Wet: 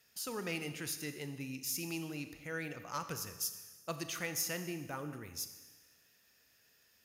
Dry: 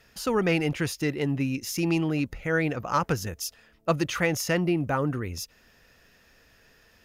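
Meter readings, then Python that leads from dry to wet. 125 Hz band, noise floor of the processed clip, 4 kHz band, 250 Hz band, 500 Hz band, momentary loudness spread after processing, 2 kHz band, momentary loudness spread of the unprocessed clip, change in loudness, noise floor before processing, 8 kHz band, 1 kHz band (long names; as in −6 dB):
−17.0 dB, −69 dBFS, −7.5 dB, −16.5 dB, −16.5 dB, 7 LU, −12.5 dB, 9 LU, −12.5 dB, −60 dBFS, −3.5 dB, −14.5 dB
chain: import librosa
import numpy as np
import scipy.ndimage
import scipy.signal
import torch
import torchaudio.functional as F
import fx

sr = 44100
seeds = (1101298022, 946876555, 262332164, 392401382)

y = scipy.signal.sosfilt(scipy.signal.butter(2, 77.0, 'highpass', fs=sr, output='sos'), x)
y = librosa.effects.preemphasis(y, coef=0.8, zi=[0.0])
y = fx.rev_schroeder(y, sr, rt60_s=1.3, comb_ms=27, drr_db=9.0)
y = y * 10.0 ** (-3.0 / 20.0)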